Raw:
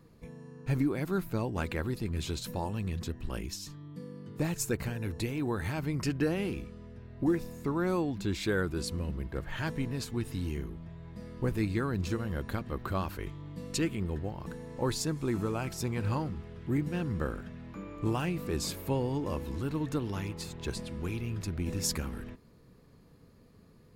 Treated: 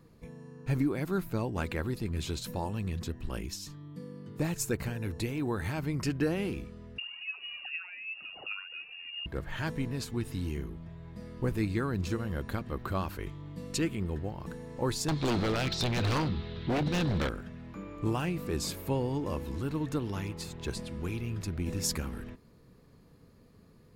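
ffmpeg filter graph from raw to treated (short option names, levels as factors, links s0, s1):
-filter_complex "[0:a]asettb=1/sr,asplit=3[s0][s1][s2];[s0]atrim=end=6.984[s3];[s1]atrim=start=6.98:end=9.26,asetpts=PTS-STARTPTS,afade=t=in:d=0.004:c=qsin,afade=t=out:st=2.276:d=0.004:c=qsin,acompressor=threshold=0.01:ratio=16:attack=3.2:release=140:knee=1:detection=peak,aphaser=in_gain=1:out_gain=1:delay=3.8:decay=0.69:speed=1.3:type=triangular,lowpass=f=2500:t=q:w=0.5098,lowpass=f=2500:t=q:w=0.6013,lowpass=f=2500:t=q:w=0.9,lowpass=f=2500:t=q:w=2.563,afreqshift=-2900[s4];[s2]atrim=start=9.256[s5];[s3][s4]acrossfade=d=0.004:c1=hsin:c2=qsin[s6];[s6][s5]acrossfade=d=0.004:c1=qsin:c2=hsin,asettb=1/sr,asplit=3[s7][s8][s9];[s7]atrim=end=15.084[s10];[s8]atrim=start=15.08:end=17.29,asetpts=PTS-STARTPTS,afade=t=in:d=0.004:c=qsin,afade=t=out:st=2.206:d=0.004:c=qsin,lowpass=f=3900:t=q:w=6.6,aeval=exprs='0.0376*(abs(mod(val(0)/0.0376+3,4)-2)-1)':c=same,acontrast=38[s11];[s9]atrim=start=17.286[s12];[s10][s11]acrossfade=d=0.004:c1=hsin:c2=qsin[s13];[s13][s12]acrossfade=d=0.004:c1=qsin:c2=hsin"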